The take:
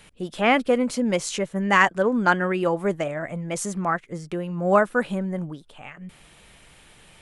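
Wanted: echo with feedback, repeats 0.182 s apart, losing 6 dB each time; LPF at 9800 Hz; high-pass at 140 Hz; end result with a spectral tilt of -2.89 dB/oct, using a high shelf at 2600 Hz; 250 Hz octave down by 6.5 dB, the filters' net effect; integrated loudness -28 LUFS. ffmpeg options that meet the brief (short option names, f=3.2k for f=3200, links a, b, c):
-af "highpass=140,lowpass=9.8k,equalizer=f=250:t=o:g=-8,highshelf=f=2.6k:g=7,aecho=1:1:182|364|546|728|910|1092:0.501|0.251|0.125|0.0626|0.0313|0.0157,volume=-6dB"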